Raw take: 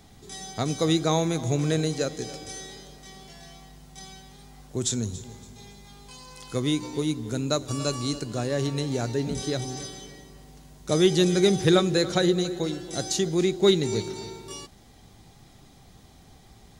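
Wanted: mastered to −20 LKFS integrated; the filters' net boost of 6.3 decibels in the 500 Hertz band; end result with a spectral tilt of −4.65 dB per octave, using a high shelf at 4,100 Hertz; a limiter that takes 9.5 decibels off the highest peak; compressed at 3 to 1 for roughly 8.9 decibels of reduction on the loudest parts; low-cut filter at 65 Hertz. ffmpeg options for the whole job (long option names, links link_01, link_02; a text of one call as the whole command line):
ffmpeg -i in.wav -af "highpass=65,equalizer=frequency=500:width_type=o:gain=8.5,highshelf=frequency=4100:gain=5,acompressor=threshold=-22dB:ratio=3,volume=10.5dB,alimiter=limit=-9.5dB:level=0:latency=1" out.wav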